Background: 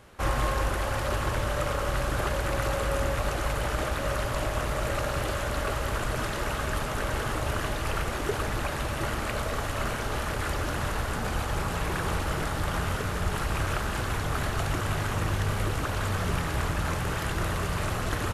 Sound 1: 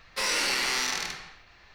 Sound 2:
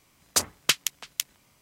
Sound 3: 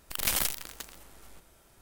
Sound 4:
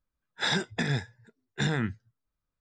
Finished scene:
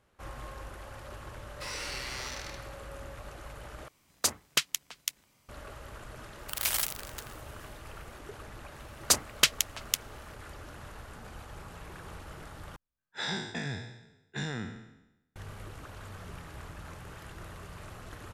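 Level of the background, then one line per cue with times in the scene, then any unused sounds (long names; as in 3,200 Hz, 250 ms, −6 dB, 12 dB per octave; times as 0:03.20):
background −16.5 dB
0:01.44: mix in 1 −12 dB
0:03.88: overwrite with 2 −4.5 dB
0:06.38: mix in 3 −1.5 dB + high-pass filter 700 Hz
0:08.74: mix in 2 −0.5 dB
0:12.76: overwrite with 4 −9.5 dB + peak hold with a decay on every bin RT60 0.91 s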